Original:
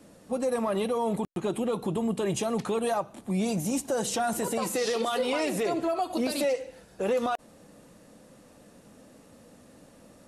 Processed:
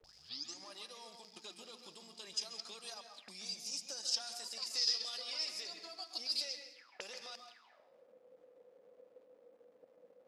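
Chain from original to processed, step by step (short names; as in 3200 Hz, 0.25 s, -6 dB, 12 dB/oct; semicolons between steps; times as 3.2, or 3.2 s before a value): tape start at the beginning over 0.72 s; gate -49 dBFS, range -17 dB; in parallel at +1 dB: limiter -28 dBFS, peak gain reduction 9.5 dB; on the sum: transient shaper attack +8 dB, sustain -11 dB; crackle 590/s -41 dBFS; auto-wah 430–5000 Hz, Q 13, up, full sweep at -27.5 dBFS; on a send at -5 dB: reverb RT60 0.70 s, pre-delay 0.133 s; on the sum: gain +8.5 dB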